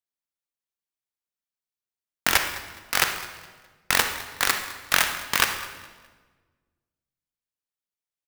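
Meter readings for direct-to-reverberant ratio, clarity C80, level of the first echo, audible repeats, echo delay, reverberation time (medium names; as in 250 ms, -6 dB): 7.5 dB, 10.0 dB, -18.5 dB, 2, 208 ms, 1.4 s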